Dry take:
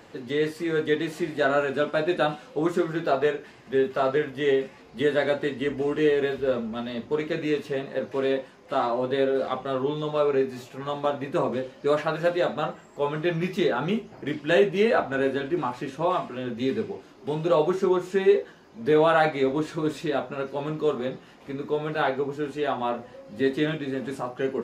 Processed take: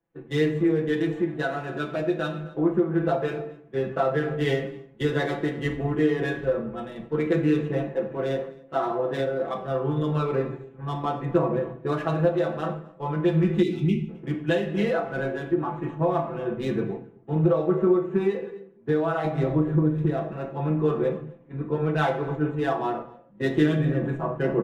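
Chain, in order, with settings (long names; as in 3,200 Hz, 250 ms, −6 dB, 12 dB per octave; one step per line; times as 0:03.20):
adaptive Wiener filter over 9 samples
comb filter 6 ms, depth 73%
noise gate −36 dBFS, range −7 dB
on a send at −5.5 dB: convolution reverb RT60 0.95 s, pre-delay 5 ms
0:13.63–0:14.09: on the sum: gain on a spectral selection 430–2,000 Hz −27 dB
0:19.24–0:20.14: low-shelf EQ 350 Hz +6.5 dB
single-tap delay 264 ms −19.5 dB
downward compressor 6 to 1, threshold −22 dBFS, peak gain reduction 10.5 dB
notch filter 580 Hz, Q 12
speech leveller within 4 dB 2 s
spectral tilt −1.5 dB per octave
multiband upward and downward expander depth 100%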